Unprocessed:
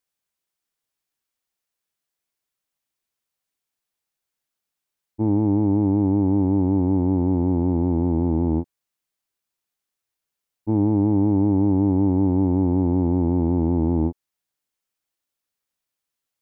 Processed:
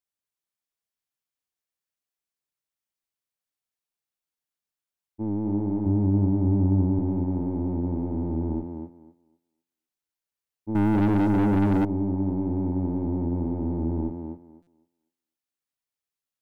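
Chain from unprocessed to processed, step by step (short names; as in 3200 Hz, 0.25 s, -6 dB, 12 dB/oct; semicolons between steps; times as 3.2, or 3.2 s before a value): octaver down 1 oct, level -4 dB; 5.86–6.99 bell 71 Hz +10 dB 2.5 oct; thinning echo 0.252 s, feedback 20%, high-pass 150 Hz, level -4.5 dB; 10.75–11.85 sample leveller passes 3; stuck buffer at 14.62, samples 256, times 8; gain -9 dB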